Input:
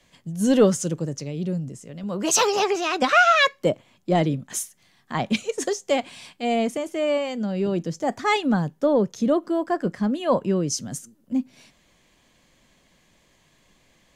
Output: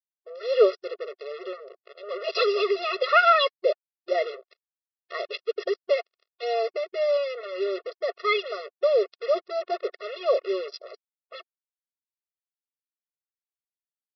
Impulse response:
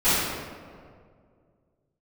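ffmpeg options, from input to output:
-af "aresample=11025,acrusher=bits=4:mix=0:aa=0.5,aresample=44100,afftfilt=real='re*eq(mod(floor(b*sr/1024/360),2),1)':imag='im*eq(mod(floor(b*sr/1024/360),2),1)':win_size=1024:overlap=0.75"

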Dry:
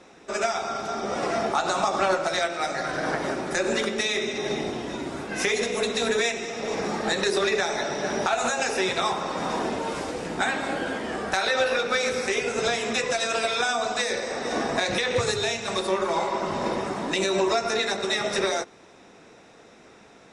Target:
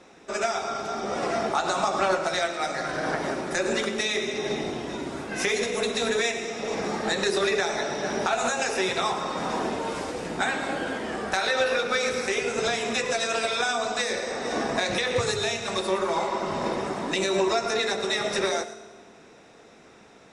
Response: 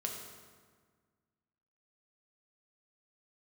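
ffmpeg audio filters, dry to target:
-filter_complex "[0:a]asplit=2[a][b];[1:a]atrim=start_sample=2205,highshelf=f=9.3k:g=11,adelay=110[c];[b][c]afir=irnorm=-1:irlink=0,volume=-15dB[d];[a][d]amix=inputs=2:normalize=0,volume=-1dB"

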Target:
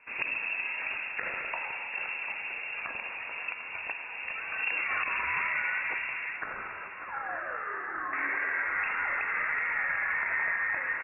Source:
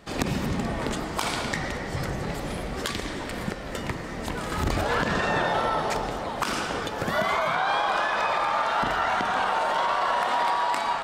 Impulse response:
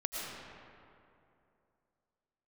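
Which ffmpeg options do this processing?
-filter_complex "[0:a]asettb=1/sr,asplit=3[a][b][c];[a]atrim=end=6.374[d];[b]atrim=start=6.37:end=8.13,asetpts=PTS-STARTPTS,afade=t=in:d=0.004:c=qsin,afade=t=out:st=1.756:d=0.004:c=qsin,highpass=f=1.2k:w=0.5412,highpass=f=1.2k:w=1.3066[e];[c]atrim=start=8.126[f];[d][e]acrossfade=d=0.004:c1=hsin:c2=qsin[g];[g][f]acrossfade=d=0.004:c1=qsin:c2=hsin,asplit=2[h][i];[i]aecho=0:1:745|1490|2235|2980:0.251|0.1|0.0402|0.0161[j];[h][j]amix=inputs=2:normalize=0,lowpass=f=2.4k:t=q:w=0.5098,lowpass=f=2.4k:t=q:w=0.6013,lowpass=f=2.4k:t=q:w=0.9,lowpass=f=2.4k:t=q:w=2.563,afreqshift=-2800,volume=-6dB"

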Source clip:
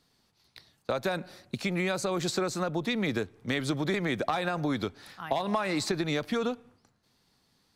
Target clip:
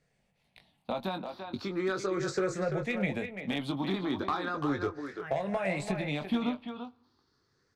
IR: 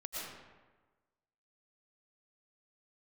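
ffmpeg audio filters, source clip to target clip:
-filter_complex "[0:a]afftfilt=real='re*pow(10,13/40*sin(2*PI*(0.52*log(max(b,1)*sr/1024/100)/log(2)-(0.37)*(pts-256)/sr)))':imag='im*pow(10,13/40*sin(2*PI*(0.52*log(max(b,1)*sr/1024/100)/log(2)-(0.37)*(pts-256)/sr)))':win_size=1024:overlap=0.75,lowpass=f=2.7k:p=1,asplit=2[a][b];[b]adelay=21,volume=-7dB[c];[a][c]amix=inputs=2:normalize=0,asplit=2[d][e];[e]adelay=340,highpass=300,lowpass=3.4k,asoftclip=type=hard:threshold=-20.5dB,volume=-6dB[f];[d][f]amix=inputs=2:normalize=0,aeval=exprs='clip(val(0),-1,0.119)':c=same,volume=-4.5dB"

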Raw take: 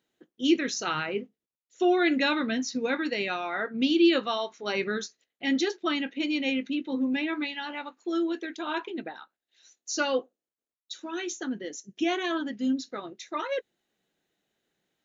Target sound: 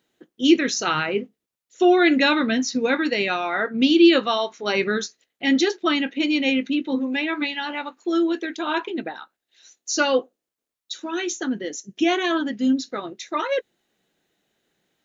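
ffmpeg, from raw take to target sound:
-filter_complex "[0:a]asplit=3[a][b][c];[a]afade=t=out:st=6.98:d=0.02[d];[b]highpass=340,afade=t=in:st=6.98:d=0.02,afade=t=out:st=7.4:d=0.02[e];[c]afade=t=in:st=7.4:d=0.02[f];[d][e][f]amix=inputs=3:normalize=0,volume=7dB"

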